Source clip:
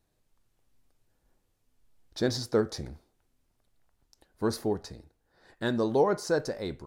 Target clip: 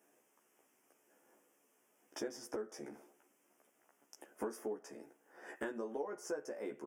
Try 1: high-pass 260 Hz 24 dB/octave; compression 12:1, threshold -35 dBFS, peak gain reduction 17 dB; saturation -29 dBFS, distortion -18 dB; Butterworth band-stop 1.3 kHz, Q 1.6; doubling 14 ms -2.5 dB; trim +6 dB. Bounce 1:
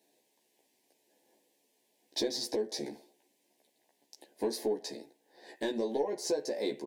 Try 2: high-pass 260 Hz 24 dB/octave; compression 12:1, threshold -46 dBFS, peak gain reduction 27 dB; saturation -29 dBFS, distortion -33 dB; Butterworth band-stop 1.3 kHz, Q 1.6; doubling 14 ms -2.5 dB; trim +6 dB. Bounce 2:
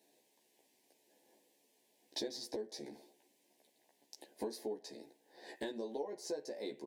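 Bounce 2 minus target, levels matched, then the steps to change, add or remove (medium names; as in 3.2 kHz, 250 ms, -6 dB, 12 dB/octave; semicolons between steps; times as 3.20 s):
4 kHz band +9.0 dB
change: Butterworth band-stop 4.1 kHz, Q 1.6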